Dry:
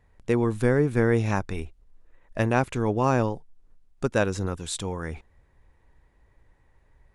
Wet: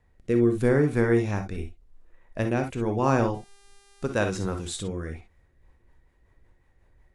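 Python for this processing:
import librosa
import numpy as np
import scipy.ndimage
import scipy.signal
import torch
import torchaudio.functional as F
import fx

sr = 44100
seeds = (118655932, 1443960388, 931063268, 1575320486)

y = fx.rotary_switch(x, sr, hz=0.85, then_hz=5.5, switch_at_s=5.07)
y = fx.rev_gated(y, sr, seeds[0], gate_ms=80, shape='rising', drr_db=5.5)
y = fx.dmg_buzz(y, sr, base_hz=400.0, harmonics=28, level_db=-59.0, tilt_db=-2, odd_only=False, at=(3.33, 4.78), fade=0.02)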